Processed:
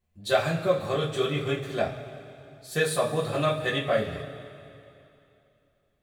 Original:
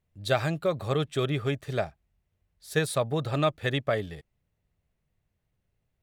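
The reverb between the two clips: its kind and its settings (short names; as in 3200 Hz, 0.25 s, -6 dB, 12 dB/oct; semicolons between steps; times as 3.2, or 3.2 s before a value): two-slope reverb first 0.25 s, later 2.8 s, from -18 dB, DRR -6.5 dB; gain -5 dB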